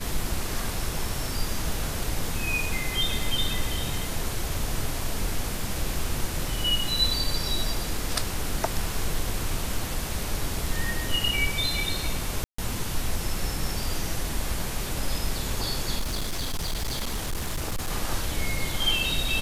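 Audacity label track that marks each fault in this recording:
12.440000	12.580000	gap 0.144 s
15.990000	17.910000	clipped -24.5 dBFS

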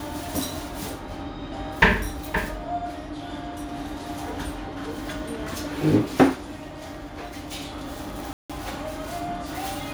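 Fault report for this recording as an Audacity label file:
8.330000	8.500000	gap 0.166 s

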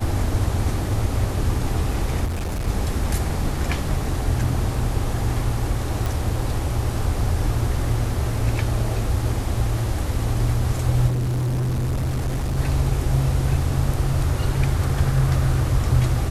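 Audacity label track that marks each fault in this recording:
2.250000	2.680000	clipped -22.5 dBFS
6.060000	6.060000	pop
11.070000	12.590000	clipped -20 dBFS

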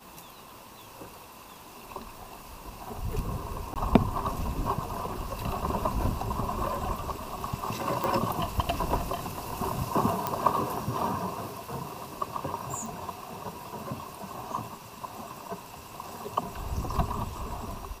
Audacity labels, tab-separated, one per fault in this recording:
3.740000	3.760000	gap 18 ms
8.040000	8.040000	pop
10.270000	10.270000	pop -12 dBFS
12.860000	12.860000	pop

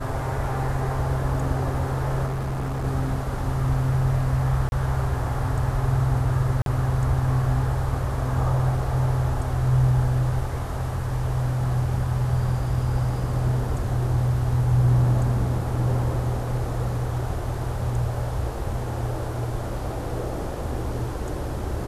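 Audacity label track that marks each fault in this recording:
2.260000	2.850000	clipped -24 dBFS
4.690000	4.720000	gap 31 ms
6.620000	6.660000	gap 42 ms

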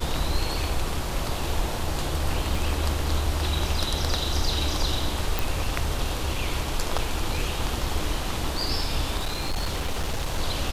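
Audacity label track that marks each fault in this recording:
2.550000	2.550000	gap 2.6 ms
5.390000	5.390000	pop
6.980000	6.990000	gap 6.3 ms
9.170000	10.390000	clipped -22.5 dBFS

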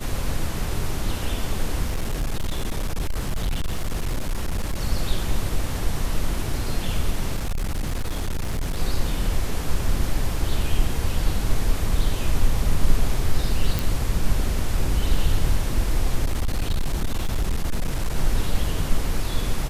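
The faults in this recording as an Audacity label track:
1.870000	4.810000	clipped -20 dBFS
7.370000	8.770000	clipped -21 dBFS
13.790000	13.790000	pop
16.240000	18.170000	clipped -18 dBFS

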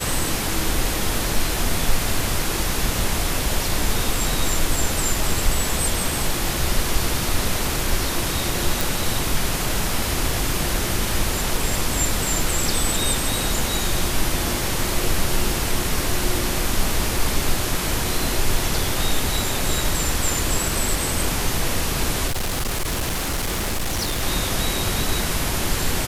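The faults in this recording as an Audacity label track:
8.810000	8.810000	pop
22.270000	24.230000	clipped -20 dBFS

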